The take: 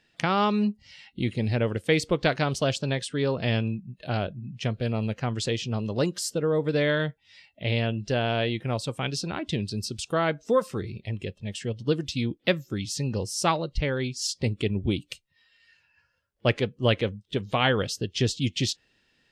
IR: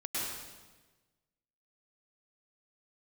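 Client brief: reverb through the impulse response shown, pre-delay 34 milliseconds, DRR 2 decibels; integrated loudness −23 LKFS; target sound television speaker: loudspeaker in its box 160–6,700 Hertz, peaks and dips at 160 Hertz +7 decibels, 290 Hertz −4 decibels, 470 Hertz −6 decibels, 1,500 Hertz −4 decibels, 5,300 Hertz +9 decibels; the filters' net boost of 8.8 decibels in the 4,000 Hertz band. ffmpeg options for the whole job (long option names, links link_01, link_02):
-filter_complex "[0:a]equalizer=frequency=4000:width_type=o:gain=8.5,asplit=2[link_01][link_02];[1:a]atrim=start_sample=2205,adelay=34[link_03];[link_02][link_03]afir=irnorm=-1:irlink=0,volume=-7dB[link_04];[link_01][link_04]amix=inputs=2:normalize=0,highpass=frequency=160:width=0.5412,highpass=frequency=160:width=1.3066,equalizer=frequency=160:width_type=q:width=4:gain=7,equalizer=frequency=290:width_type=q:width=4:gain=-4,equalizer=frequency=470:width_type=q:width=4:gain=-6,equalizer=frequency=1500:width_type=q:width=4:gain=-4,equalizer=frequency=5300:width_type=q:width=4:gain=9,lowpass=frequency=6700:width=0.5412,lowpass=frequency=6700:width=1.3066,volume=1dB"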